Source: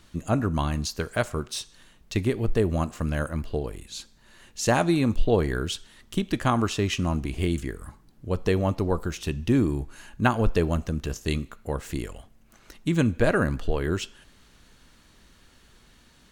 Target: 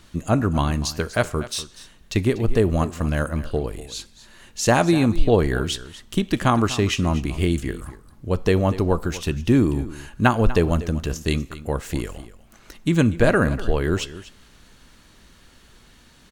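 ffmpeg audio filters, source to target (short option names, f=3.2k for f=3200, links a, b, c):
-af "aecho=1:1:243:0.158,volume=4.5dB"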